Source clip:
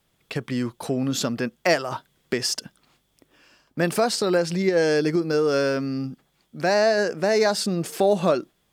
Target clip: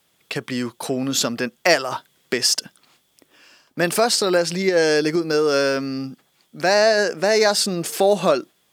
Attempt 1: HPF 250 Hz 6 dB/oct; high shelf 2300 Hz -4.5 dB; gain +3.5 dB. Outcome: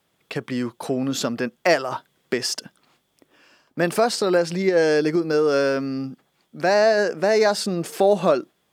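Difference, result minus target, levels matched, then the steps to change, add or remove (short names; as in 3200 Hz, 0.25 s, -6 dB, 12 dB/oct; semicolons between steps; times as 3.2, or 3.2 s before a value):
4000 Hz band -5.5 dB
change: high shelf 2300 Hz +4.5 dB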